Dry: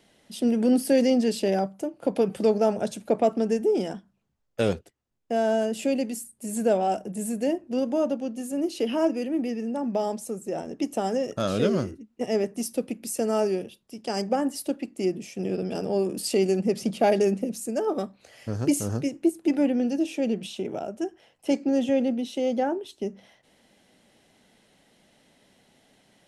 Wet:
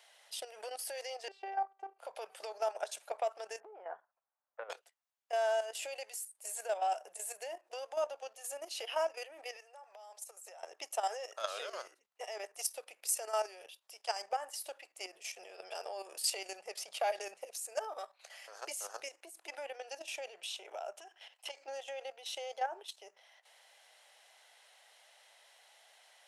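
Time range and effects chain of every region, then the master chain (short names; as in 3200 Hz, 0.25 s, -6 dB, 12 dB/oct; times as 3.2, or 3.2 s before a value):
1.28–1.99 LPF 1600 Hz + robotiser 389 Hz
3.6–4.7 LPF 1600 Hz 24 dB/oct + compressor 16:1, threshold -28 dBFS
9.56–10.63 HPF 510 Hz + high shelf 8300 Hz +4 dB + compressor 10:1, threshold -40 dBFS
20.97–21.57 bell 3200 Hz +7 dB 1.3 oct + compressor, threshold -33 dBFS
whole clip: compressor 3:1, threshold -25 dBFS; inverse Chebyshev high-pass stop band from 260 Hz, stop band 50 dB; level quantiser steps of 11 dB; gain +2.5 dB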